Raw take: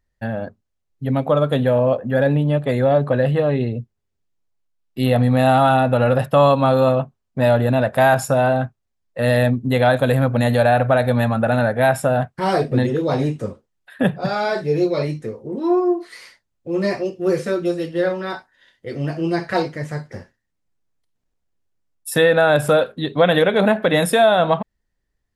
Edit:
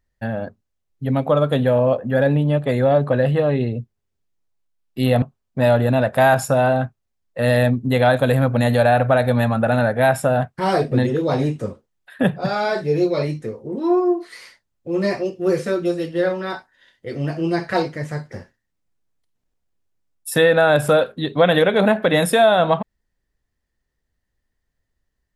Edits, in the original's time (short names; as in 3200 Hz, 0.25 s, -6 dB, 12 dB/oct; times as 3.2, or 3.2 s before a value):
5.22–7.02 cut